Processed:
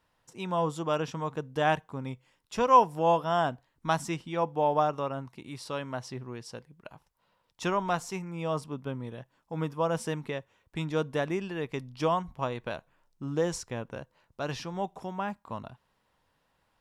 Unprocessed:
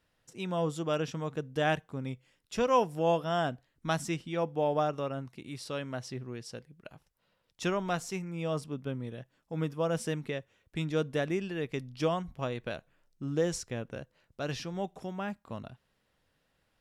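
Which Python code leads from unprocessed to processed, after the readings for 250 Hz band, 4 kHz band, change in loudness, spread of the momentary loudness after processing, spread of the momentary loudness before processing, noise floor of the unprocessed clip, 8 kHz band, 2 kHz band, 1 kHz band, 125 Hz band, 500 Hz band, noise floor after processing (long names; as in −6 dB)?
0.0 dB, 0.0 dB, +3.0 dB, 16 LU, 14 LU, −76 dBFS, 0.0 dB, +1.5 dB, +7.0 dB, 0.0 dB, +1.5 dB, −74 dBFS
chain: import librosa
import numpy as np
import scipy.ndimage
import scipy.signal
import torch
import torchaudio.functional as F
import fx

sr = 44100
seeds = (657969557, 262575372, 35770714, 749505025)

y = fx.peak_eq(x, sr, hz=960.0, db=10.0, octaves=0.62)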